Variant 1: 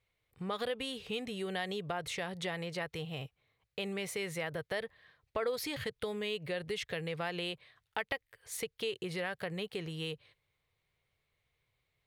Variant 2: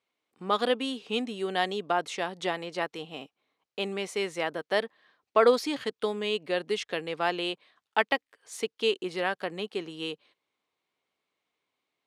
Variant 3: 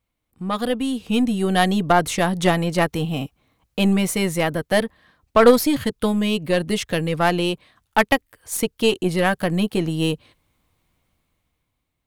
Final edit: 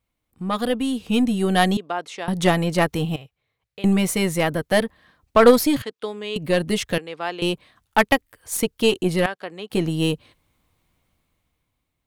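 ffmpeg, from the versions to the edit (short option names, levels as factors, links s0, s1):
-filter_complex "[1:a]asplit=4[s0][s1][s2][s3];[2:a]asplit=6[s4][s5][s6][s7][s8][s9];[s4]atrim=end=1.772[s10];[s0]atrim=start=1.768:end=2.282[s11];[s5]atrim=start=2.278:end=3.162[s12];[0:a]atrim=start=3.158:end=3.842[s13];[s6]atrim=start=3.838:end=5.822[s14];[s1]atrim=start=5.818:end=6.362[s15];[s7]atrim=start=6.358:end=6.982[s16];[s2]atrim=start=6.978:end=7.422[s17];[s8]atrim=start=7.418:end=9.262[s18];[s3]atrim=start=9.258:end=9.702[s19];[s9]atrim=start=9.698[s20];[s10][s11]acrossfade=d=0.004:c1=hsin:c2=hsin[s21];[s21][s12]acrossfade=d=0.004:c1=hsin:c2=hsin[s22];[s22][s13]acrossfade=d=0.004:c1=hsin:c2=hsin[s23];[s23][s14]acrossfade=d=0.004:c1=hsin:c2=hsin[s24];[s24][s15]acrossfade=d=0.004:c1=hsin:c2=hsin[s25];[s25][s16]acrossfade=d=0.004:c1=hsin:c2=hsin[s26];[s26][s17]acrossfade=d=0.004:c1=hsin:c2=hsin[s27];[s27][s18]acrossfade=d=0.004:c1=hsin:c2=hsin[s28];[s28][s19]acrossfade=d=0.004:c1=hsin:c2=hsin[s29];[s29][s20]acrossfade=d=0.004:c1=hsin:c2=hsin"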